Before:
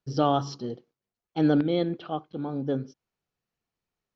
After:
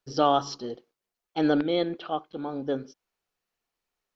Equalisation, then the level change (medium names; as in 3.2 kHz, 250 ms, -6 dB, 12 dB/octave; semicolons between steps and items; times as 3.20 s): peaking EQ 120 Hz -13.5 dB 2.3 oct; +4.0 dB